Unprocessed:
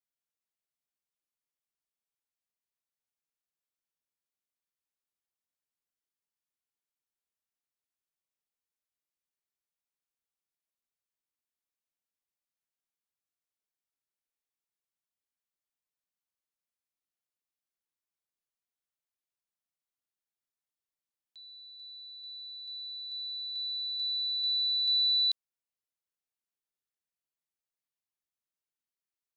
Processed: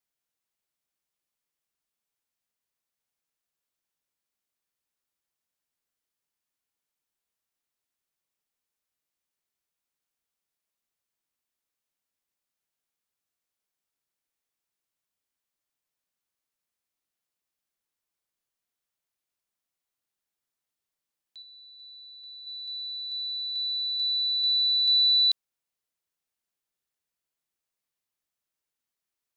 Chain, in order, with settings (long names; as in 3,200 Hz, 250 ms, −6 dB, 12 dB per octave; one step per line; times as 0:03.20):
0:21.42–0:22.47: high-shelf EQ 4,000 Hz −11.5 dB
level +5.5 dB